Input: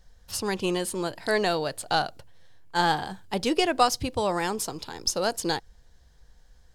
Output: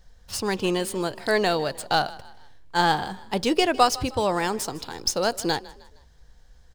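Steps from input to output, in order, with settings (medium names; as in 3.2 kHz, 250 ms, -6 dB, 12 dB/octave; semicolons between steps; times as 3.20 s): median filter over 3 samples; frequency-shifting echo 155 ms, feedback 41%, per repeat +32 Hz, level -20 dB; trim +2.5 dB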